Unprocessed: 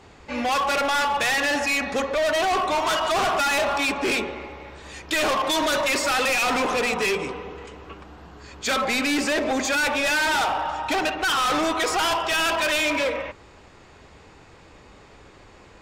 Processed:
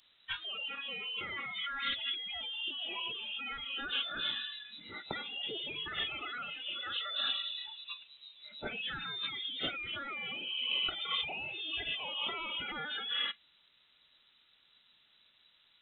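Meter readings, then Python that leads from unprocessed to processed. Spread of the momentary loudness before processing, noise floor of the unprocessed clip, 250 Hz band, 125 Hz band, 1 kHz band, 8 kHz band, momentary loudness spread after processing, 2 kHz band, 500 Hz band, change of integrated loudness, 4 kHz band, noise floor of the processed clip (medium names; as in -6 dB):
12 LU, -49 dBFS, -23.5 dB, -15.0 dB, -21.5 dB, under -40 dB, 9 LU, -15.5 dB, -26.0 dB, -14.0 dB, -6.0 dB, -68 dBFS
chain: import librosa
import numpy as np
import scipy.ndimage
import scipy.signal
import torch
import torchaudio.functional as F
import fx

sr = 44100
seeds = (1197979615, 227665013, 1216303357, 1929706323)

y = fx.freq_invert(x, sr, carrier_hz=3900)
y = fx.over_compress(y, sr, threshold_db=-30.0, ratio=-1.0)
y = fx.noise_reduce_blind(y, sr, reduce_db=18)
y = y * librosa.db_to_amplitude(-7.0)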